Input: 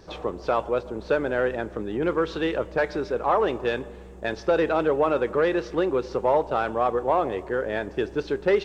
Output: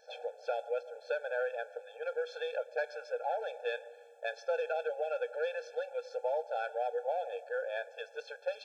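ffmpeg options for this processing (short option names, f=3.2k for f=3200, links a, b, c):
-filter_complex "[0:a]acrossover=split=150|3000[a][b][c];[b]acompressor=threshold=-24dB:ratio=2.5[d];[a][d][c]amix=inputs=3:normalize=0,afftfilt=real='re*eq(mod(floor(b*sr/1024/450),2),1)':imag='im*eq(mod(floor(b*sr/1024/450),2),1)':win_size=1024:overlap=0.75,volume=-6dB"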